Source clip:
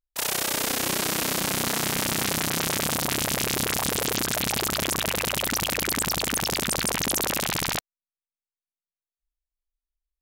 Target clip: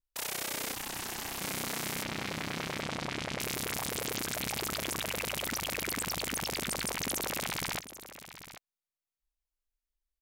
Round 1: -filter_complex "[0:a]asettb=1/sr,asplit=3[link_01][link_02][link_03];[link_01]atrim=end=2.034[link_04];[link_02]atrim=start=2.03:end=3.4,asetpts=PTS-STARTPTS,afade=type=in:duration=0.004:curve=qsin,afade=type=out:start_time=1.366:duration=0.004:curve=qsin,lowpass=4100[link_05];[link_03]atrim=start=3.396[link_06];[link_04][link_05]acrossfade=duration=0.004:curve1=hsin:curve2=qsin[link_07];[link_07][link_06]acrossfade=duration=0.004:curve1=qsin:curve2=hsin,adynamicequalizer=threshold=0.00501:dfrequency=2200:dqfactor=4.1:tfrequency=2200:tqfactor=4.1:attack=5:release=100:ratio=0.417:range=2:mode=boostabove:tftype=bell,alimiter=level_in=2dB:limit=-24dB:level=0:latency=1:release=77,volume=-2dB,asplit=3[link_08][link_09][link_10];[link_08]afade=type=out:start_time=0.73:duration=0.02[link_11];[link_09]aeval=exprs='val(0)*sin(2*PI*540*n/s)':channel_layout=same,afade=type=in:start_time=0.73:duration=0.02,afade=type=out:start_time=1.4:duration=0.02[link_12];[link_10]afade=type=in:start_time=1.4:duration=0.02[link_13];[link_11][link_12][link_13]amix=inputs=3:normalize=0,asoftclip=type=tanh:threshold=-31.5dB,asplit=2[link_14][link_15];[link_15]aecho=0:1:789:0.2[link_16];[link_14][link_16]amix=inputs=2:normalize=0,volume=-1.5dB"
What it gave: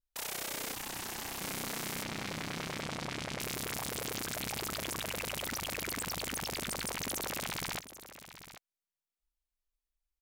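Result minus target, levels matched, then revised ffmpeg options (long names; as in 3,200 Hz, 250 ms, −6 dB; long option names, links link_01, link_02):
soft clipping: distortion +16 dB
-filter_complex "[0:a]asettb=1/sr,asplit=3[link_01][link_02][link_03];[link_01]atrim=end=2.034[link_04];[link_02]atrim=start=2.03:end=3.4,asetpts=PTS-STARTPTS,afade=type=in:duration=0.004:curve=qsin,afade=type=out:start_time=1.366:duration=0.004:curve=qsin,lowpass=4100[link_05];[link_03]atrim=start=3.396[link_06];[link_04][link_05]acrossfade=duration=0.004:curve1=hsin:curve2=qsin[link_07];[link_07][link_06]acrossfade=duration=0.004:curve1=qsin:curve2=hsin,adynamicequalizer=threshold=0.00501:dfrequency=2200:dqfactor=4.1:tfrequency=2200:tqfactor=4.1:attack=5:release=100:ratio=0.417:range=2:mode=boostabove:tftype=bell,alimiter=level_in=2dB:limit=-24dB:level=0:latency=1:release=77,volume=-2dB,asplit=3[link_08][link_09][link_10];[link_08]afade=type=out:start_time=0.73:duration=0.02[link_11];[link_09]aeval=exprs='val(0)*sin(2*PI*540*n/s)':channel_layout=same,afade=type=in:start_time=0.73:duration=0.02,afade=type=out:start_time=1.4:duration=0.02[link_12];[link_10]afade=type=in:start_time=1.4:duration=0.02[link_13];[link_11][link_12][link_13]amix=inputs=3:normalize=0,asoftclip=type=tanh:threshold=-21.5dB,asplit=2[link_14][link_15];[link_15]aecho=0:1:789:0.2[link_16];[link_14][link_16]amix=inputs=2:normalize=0,volume=-1.5dB"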